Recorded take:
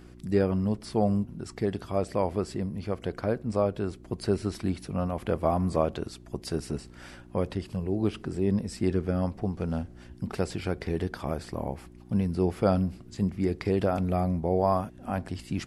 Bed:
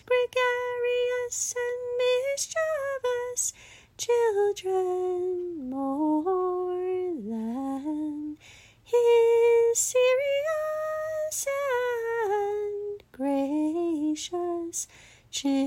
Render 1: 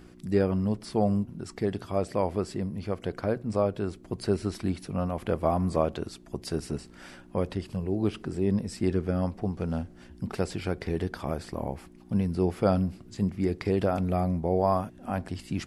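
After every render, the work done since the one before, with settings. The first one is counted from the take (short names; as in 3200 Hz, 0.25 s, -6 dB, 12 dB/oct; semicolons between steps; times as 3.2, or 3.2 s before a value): de-hum 60 Hz, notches 2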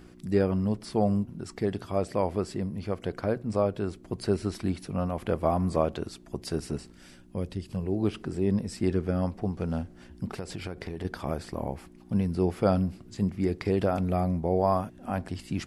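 6.92–7.71 bell 1000 Hz -11 dB 2.7 oct; 10.25–11.05 compressor, threshold -31 dBFS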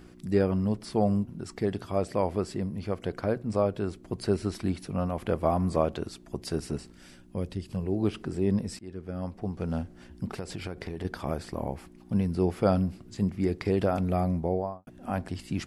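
8.79–9.77 fade in, from -22.5 dB; 14.38–14.87 studio fade out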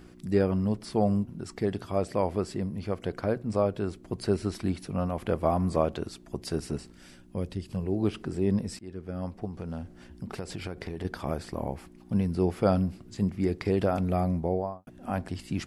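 9.45–10.34 compressor 3:1, threshold -33 dBFS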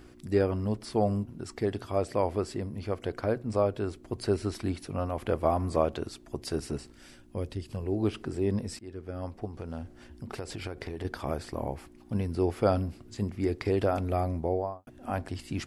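bell 180 Hz -12.5 dB 0.26 oct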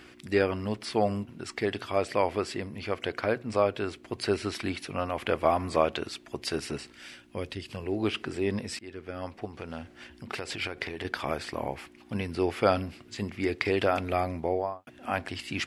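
HPF 150 Hz 6 dB/oct; bell 2500 Hz +12 dB 1.9 oct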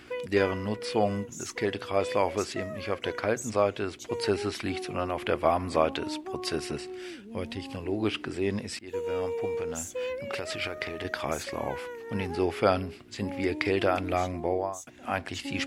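add bed -11.5 dB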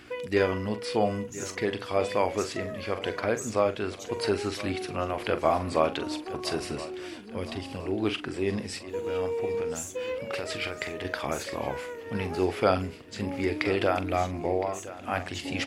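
doubler 43 ms -11 dB; feedback echo 1.013 s, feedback 49%, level -16 dB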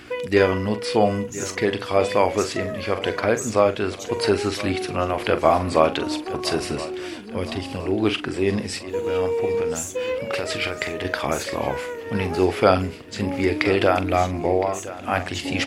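gain +7 dB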